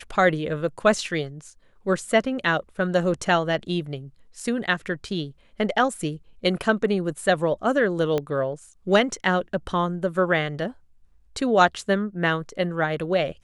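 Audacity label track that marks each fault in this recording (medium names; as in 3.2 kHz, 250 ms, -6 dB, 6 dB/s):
8.180000	8.180000	pop -13 dBFS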